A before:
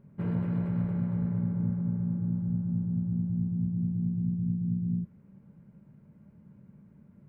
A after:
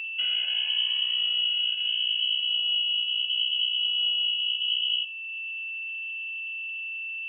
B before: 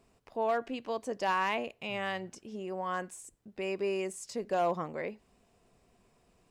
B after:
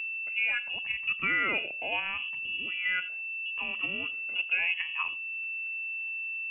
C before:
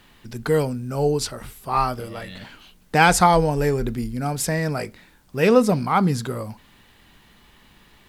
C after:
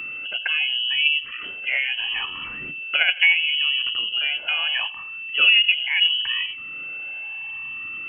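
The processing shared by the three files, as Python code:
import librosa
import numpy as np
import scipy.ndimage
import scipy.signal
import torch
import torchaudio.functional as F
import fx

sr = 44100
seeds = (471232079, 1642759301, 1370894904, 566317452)

p1 = fx.spec_ripple(x, sr, per_octave=1.5, drift_hz=-0.75, depth_db=15)
p2 = scipy.signal.sosfilt(scipy.signal.butter(4, 56.0, 'highpass', fs=sr, output='sos'), p1)
p3 = fx.env_lowpass_down(p2, sr, base_hz=960.0, full_db=-15.5)
p4 = fx.level_steps(p3, sr, step_db=16)
p5 = p3 + (p4 * 10.0 ** (1.5 / 20.0))
p6 = p5 + 10.0 ** (-31.0 / 20.0) * np.sin(2.0 * np.pi * 430.0 * np.arange(len(p5)) / sr)
p7 = p6 + fx.echo_single(p6, sr, ms=87, db=-20.5, dry=0)
p8 = fx.freq_invert(p7, sr, carrier_hz=3100)
p9 = fx.band_squash(p8, sr, depth_pct=40)
y = p9 * 10.0 ** (-4.5 / 20.0)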